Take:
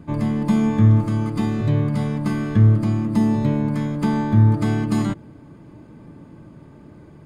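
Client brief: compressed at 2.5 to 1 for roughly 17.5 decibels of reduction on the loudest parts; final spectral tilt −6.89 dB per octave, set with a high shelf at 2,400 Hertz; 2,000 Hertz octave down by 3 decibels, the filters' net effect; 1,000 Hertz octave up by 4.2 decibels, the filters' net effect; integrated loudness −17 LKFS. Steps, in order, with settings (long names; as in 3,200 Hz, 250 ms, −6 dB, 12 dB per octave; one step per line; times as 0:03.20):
parametric band 1,000 Hz +6.5 dB
parametric band 2,000 Hz −5 dB
high-shelf EQ 2,400 Hz −4 dB
downward compressor 2.5 to 1, threshold −37 dBFS
level +17.5 dB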